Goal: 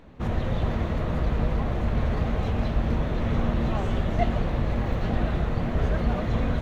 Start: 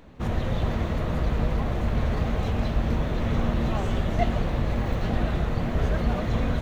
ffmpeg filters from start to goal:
ffmpeg -i in.wav -af "highshelf=frequency=5200:gain=-7.5" out.wav

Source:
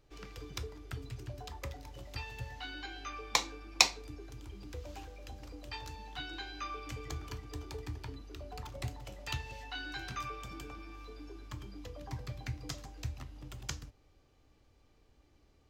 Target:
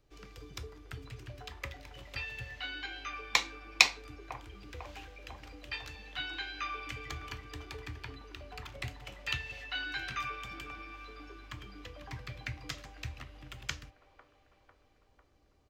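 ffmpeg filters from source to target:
ffmpeg -i in.wav -filter_complex "[0:a]bandreject=frequency=880:width=27,acrossover=split=410|1700|2900[link_01][link_02][link_03][link_04];[link_02]aecho=1:1:499|998|1497|1996|2495|2994|3493|3992:0.501|0.301|0.18|0.108|0.065|0.039|0.0234|0.014[link_05];[link_03]dynaudnorm=framelen=110:gausssize=21:maxgain=15dB[link_06];[link_01][link_05][link_06][link_04]amix=inputs=4:normalize=0,volume=-3dB" out.wav

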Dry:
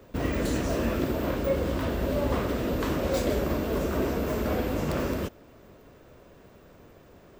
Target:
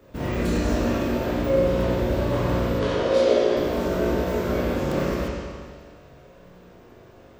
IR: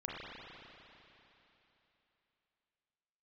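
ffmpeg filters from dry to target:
-filter_complex "[0:a]asettb=1/sr,asplit=3[link_01][link_02][link_03];[link_01]atrim=end=2.794[link_04];[link_02]atrim=start=2.79:end=3.57,asetpts=PTS-STARTPTS,afade=type=in:duration=0.004:curve=qsin,afade=type=out:start_time=0.776:duration=0.004:curve=qsin,highpass=280,equalizer=frequency=420:width_type=q:width=4:gain=8,equalizer=frequency=600:width_type=q:width=4:gain=3,equalizer=frequency=3200:width_type=q:width=4:gain=5,equalizer=frequency=4600:width_type=q:width=4:gain=3,equalizer=frequency=7700:width_type=q:width=4:gain=-8,lowpass=frequency=9800:width=0.5412,lowpass=frequency=9800:width=1.3066[link_05];[link_03]atrim=start=3.566[link_06];[link_04][link_05]acrossfade=duration=0.004:curve1=hsin:curve2=qsin[link_07];[link_07][link_06]acrossfade=duration=0.004:curve1=qsin:curve2=hsin[link_08];[1:a]atrim=start_sample=2205,asetrate=79380,aresample=44100[link_09];[link_08][link_09]afir=irnorm=-1:irlink=0,volume=6dB"

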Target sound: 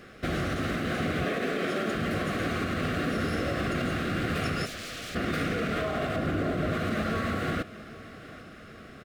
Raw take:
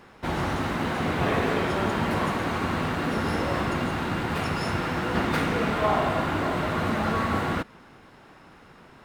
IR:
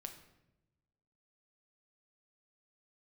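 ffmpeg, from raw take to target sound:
-filter_complex "[0:a]asettb=1/sr,asplit=3[link_01][link_02][link_03];[link_01]atrim=end=1.244[link_04];[link_02]atrim=start=1.24:end=1.95,asetpts=PTS-STARTPTS,afade=type=in:duration=0.004:curve=qsin,afade=type=out:start_time=0.706:duration=0.004:curve=qsin,highpass=frequency=170:width=0.5412,highpass=frequency=170:width=1.3066[link_05];[link_03]atrim=start=1.946[link_06];[link_04][link_05]acrossfade=duration=0.004:curve1=hsin:curve2=qsin[link_07];[link_07][link_06]acrossfade=duration=0.004:curve1=qsin:curve2=hsin,asettb=1/sr,asplit=3[link_08][link_09][link_10];[link_08]atrim=end=6.164[link_11];[link_09]atrim=start=6.16:end=6.73,asetpts=PTS-STARTPTS,afade=type=in:duration=0.004:curve=qsin,afade=type=out:start_time=0.566:duration=0.004:curve=qsin,tiltshelf=frequency=970:gain=4[link_12];[link_10]atrim=start=6.726[link_13];[link_11][link_12]acrossfade=duration=0.004:curve1=hsin:curve2=qsin[link_14];[link_14][link_13]acrossfade=duration=0.004:curve1=qsin:curve2=hsin,alimiter=limit=-22.5dB:level=0:latency=1:release=142,asplit=3[link_15][link_16][link_17];[link_15]afade=type=out:start_time=4.65:duration=0.02[link_18];[link_16]aeval=exprs='0.0141*(abs(mod(val(0)/0.0141+3,4)-2)-1)':channel_layout=same,afade=type=in:start_time=4.65:duration=0.02,afade=type=out:start_time=5.14:duration=0.02[link_19];[link_17]afade=type=in:start_time=5.14:duration=0.02[link_20];[link_18][link_19][link_20]amix=inputs=3:normalize=0,asuperstop=centerf=920:order=4:qfactor=2.1,aecho=1:1:803|1606|2409|3212:0.126|0.0642|0.0327|0.0167,volume=3dB"

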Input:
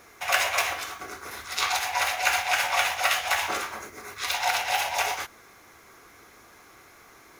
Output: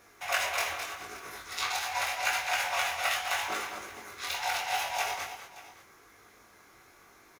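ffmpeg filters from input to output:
ffmpeg -i in.wav -filter_complex "[0:a]flanger=delay=18.5:depth=5.9:speed=0.82,asplit=2[link_01][link_02];[link_02]aecho=0:1:212|576:0.335|0.126[link_03];[link_01][link_03]amix=inputs=2:normalize=0,volume=-3dB" out.wav

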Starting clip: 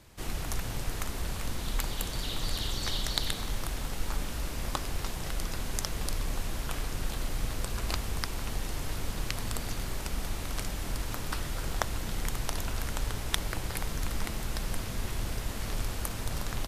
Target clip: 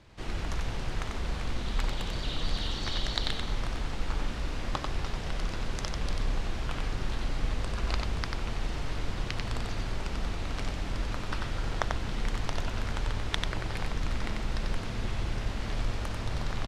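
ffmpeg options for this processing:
ffmpeg -i in.wav -filter_complex "[0:a]lowpass=4400,asplit=2[link_01][link_02];[link_02]aecho=0:1:92:0.631[link_03];[link_01][link_03]amix=inputs=2:normalize=0" out.wav

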